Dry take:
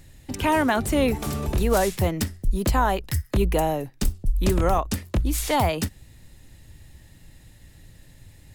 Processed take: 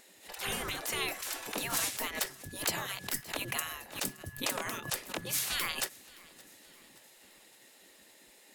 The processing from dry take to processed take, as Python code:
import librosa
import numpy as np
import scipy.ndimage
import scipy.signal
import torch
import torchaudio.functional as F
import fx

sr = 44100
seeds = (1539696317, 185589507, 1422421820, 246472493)

y = x + 10.0 ** (-54.0 / 20.0) * np.sin(2.0 * np.pi * 1700.0 * np.arange(len(x)) / sr)
y = fx.spec_gate(y, sr, threshold_db=-20, keep='weak')
y = fx.echo_feedback(y, sr, ms=570, feedback_pct=56, wet_db=-23)
y = fx.pre_swell(y, sr, db_per_s=150.0)